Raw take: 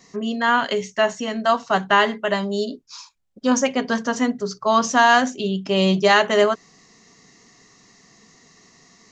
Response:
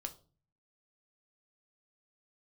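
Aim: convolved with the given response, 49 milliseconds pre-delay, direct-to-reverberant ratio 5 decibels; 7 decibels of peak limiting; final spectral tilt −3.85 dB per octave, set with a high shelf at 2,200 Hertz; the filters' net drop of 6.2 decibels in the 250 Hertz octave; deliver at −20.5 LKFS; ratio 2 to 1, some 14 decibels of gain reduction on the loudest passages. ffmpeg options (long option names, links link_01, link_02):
-filter_complex "[0:a]equalizer=frequency=250:width_type=o:gain=-7.5,highshelf=frequency=2200:gain=-6,acompressor=threshold=-40dB:ratio=2,alimiter=level_in=2.5dB:limit=-24dB:level=0:latency=1,volume=-2.5dB,asplit=2[link_01][link_02];[1:a]atrim=start_sample=2205,adelay=49[link_03];[link_02][link_03]afir=irnorm=-1:irlink=0,volume=-2.5dB[link_04];[link_01][link_04]amix=inputs=2:normalize=0,volume=15.5dB"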